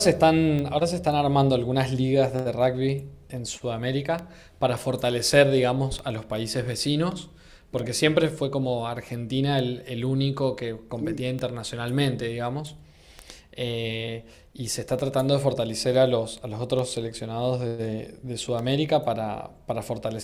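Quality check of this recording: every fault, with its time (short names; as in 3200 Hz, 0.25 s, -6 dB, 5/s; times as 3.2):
tick 33 1/3 rpm -19 dBFS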